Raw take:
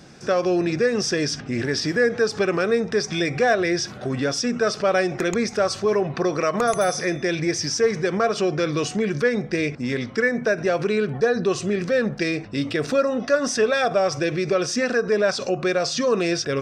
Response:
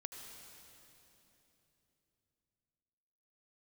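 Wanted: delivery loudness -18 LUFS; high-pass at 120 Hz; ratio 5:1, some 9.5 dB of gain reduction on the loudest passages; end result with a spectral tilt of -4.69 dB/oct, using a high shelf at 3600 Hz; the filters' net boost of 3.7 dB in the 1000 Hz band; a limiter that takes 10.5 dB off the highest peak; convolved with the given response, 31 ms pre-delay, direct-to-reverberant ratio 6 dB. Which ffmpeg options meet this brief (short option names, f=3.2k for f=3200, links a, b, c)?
-filter_complex "[0:a]highpass=120,equalizer=f=1k:t=o:g=6.5,highshelf=f=3.6k:g=-8.5,acompressor=threshold=-24dB:ratio=5,alimiter=level_in=0.5dB:limit=-24dB:level=0:latency=1,volume=-0.5dB,asplit=2[a][b];[1:a]atrim=start_sample=2205,adelay=31[c];[b][c]afir=irnorm=-1:irlink=0,volume=-3dB[d];[a][d]amix=inputs=2:normalize=0,volume=14dB"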